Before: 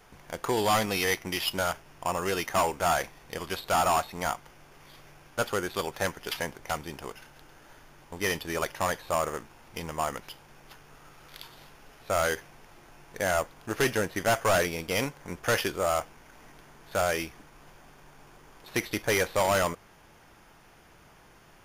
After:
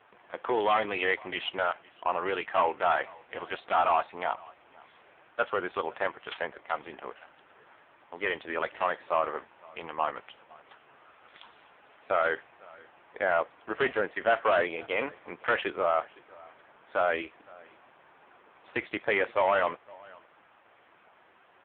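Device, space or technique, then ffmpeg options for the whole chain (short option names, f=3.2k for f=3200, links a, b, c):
satellite phone: -filter_complex "[0:a]asplit=3[a][b][c];[a]afade=t=out:st=4.23:d=0.02[d];[b]adynamicequalizer=threshold=0.00562:dfrequency=1500:dqfactor=2.2:tfrequency=1500:tqfactor=2.2:attack=5:release=100:ratio=0.375:range=2:mode=cutabove:tftype=bell,afade=t=in:st=4.23:d=0.02,afade=t=out:st=5.52:d=0.02[e];[c]afade=t=in:st=5.52:d=0.02[f];[d][e][f]amix=inputs=3:normalize=0,highpass=380,lowpass=3.4k,aecho=1:1:510:0.0668,volume=2.5dB" -ar 8000 -c:a libopencore_amrnb -b:a 5900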